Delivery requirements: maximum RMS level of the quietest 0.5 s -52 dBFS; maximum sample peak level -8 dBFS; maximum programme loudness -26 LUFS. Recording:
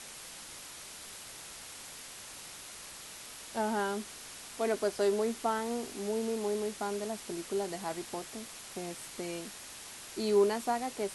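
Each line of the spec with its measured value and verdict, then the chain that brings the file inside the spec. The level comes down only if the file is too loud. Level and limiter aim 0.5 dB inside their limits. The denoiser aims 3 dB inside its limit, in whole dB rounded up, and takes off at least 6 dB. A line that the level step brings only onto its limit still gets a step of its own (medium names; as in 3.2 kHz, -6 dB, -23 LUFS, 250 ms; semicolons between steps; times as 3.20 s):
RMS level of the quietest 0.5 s -47 dBFS: fail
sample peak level -16.5 dBFS: pass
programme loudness -35.5 LUFS: pass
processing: noise reduction 8 dB, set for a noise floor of -47 dBFS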